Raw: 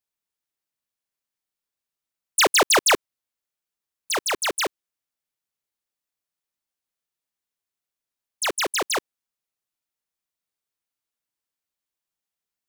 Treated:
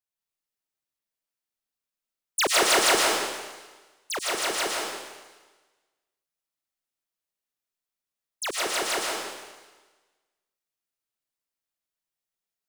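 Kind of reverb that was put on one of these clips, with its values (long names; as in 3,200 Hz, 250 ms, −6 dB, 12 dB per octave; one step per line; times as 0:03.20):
comb and all-pass reverb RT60 1.3 s, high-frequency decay 1×, pre-delay 75 ms, DRR −2.5 dB
level −6.5 dB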